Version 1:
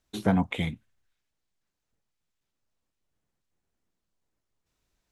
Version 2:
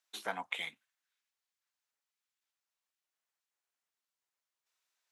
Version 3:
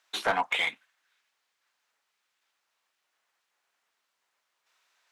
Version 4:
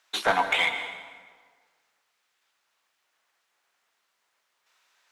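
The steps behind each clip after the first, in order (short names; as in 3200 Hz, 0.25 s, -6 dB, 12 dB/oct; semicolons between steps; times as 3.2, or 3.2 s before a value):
HPF 1000 Hz 12 dB/oct; gain -2.5 dB
overdrive pedal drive 20 dB, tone 2100 Hz, clips at -17.5 dBFS; gain +4.5 dB
plate-style reverb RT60 1.6 s, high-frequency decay 0.7×, pre-delay 0.105 s, DRR 8.5 dB; gain +3.5 dB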